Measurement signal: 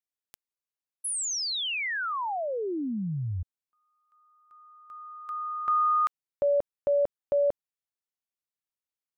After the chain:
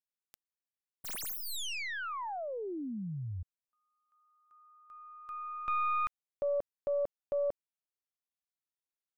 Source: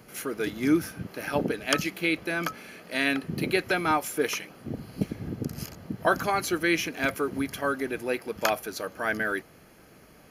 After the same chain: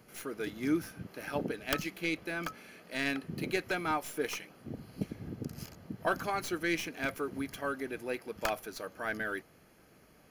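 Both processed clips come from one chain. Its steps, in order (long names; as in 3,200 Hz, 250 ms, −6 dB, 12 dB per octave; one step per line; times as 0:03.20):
stylus tracing distortion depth 0.17 ms
level −7.5 dB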